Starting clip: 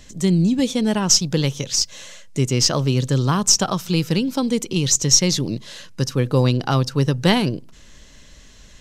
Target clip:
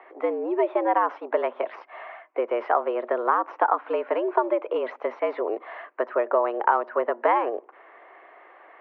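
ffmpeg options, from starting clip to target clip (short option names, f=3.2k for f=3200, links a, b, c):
-af "equalizer=f=820:w=1:g=14,acompressor=threshold=-17dB:ratio=4,highpass=f=280:t=q:w=0.5412,highpass=f=280:t=q:w=1.307,lowpass=f=2.1k:t=q:w=0.5176,lowpass=f=2.1k:t=q:w=0.7071,lowpass=f=2.1k:t=q:w=1.932,afreqshift=110"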